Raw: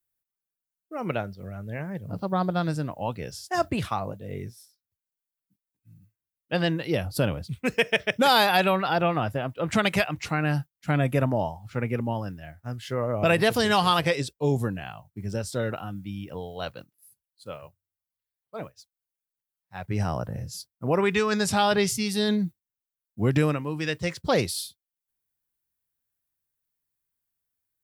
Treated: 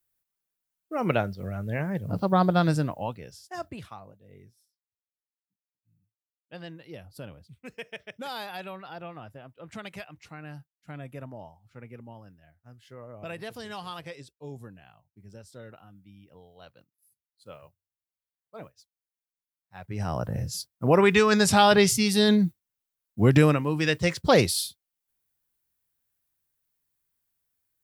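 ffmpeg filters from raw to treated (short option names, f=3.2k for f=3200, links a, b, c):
-af "volume=25dB,afade=t=out:st=2.76:d=0.44:silence=0.251189,afade=t=out:st=3.2:d=0.88:silence=0.354813,afade=t=in:st=16.71:d=0.9:silence=0.298538,afade=t=in:st=19.96:d=0.45:silence=0.298538"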